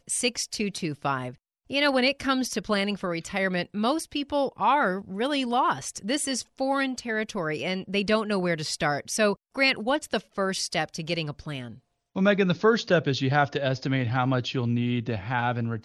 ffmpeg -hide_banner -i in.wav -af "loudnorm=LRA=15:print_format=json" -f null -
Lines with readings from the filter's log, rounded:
"input_i" : "-26.2",
"input_tp" : "-9.4",
"input_lra" : "1.7",
"input_thresh" : "-36.4",